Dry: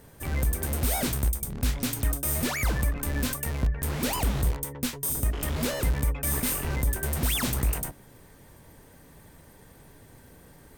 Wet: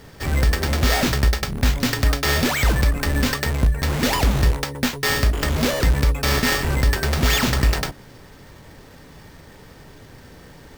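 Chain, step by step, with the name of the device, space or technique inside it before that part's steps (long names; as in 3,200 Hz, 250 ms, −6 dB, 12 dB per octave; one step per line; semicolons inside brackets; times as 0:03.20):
early companding sampler (sample-rate reduction 10,000 Hz, jitter 0%; log-companded quantiser 8 bits)
level +8 dB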